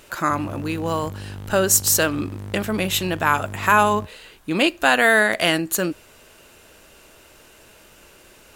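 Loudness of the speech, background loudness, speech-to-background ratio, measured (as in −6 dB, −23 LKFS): −20.0 LKFS, −35.5 LKFS, 15.5 dB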